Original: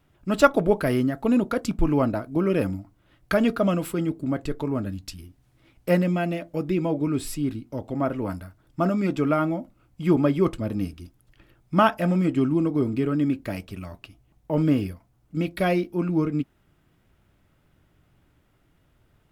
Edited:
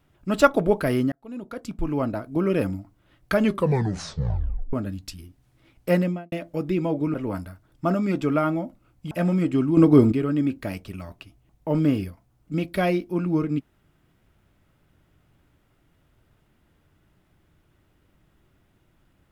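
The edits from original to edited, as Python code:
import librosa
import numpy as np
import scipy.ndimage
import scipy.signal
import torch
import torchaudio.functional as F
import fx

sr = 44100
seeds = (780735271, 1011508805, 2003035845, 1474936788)

y = fx.studio_fade_out(x, sr, start_s=6.0, length_s=0.32)
y = fx.edit(y, sr, fx.fade_in_span(start_s=1.12, length_s=1.32),
    fx.tape_stop(start_s=3.37, length_s=1.36),
    fx.cut(start_s=7.14, length_s=0.95),
    fx.cut(start_s=10.06, length_s=1.88),
    fx.clip_gain(start_s=12.6, length_s=0.35, db=9.0), tone=tone)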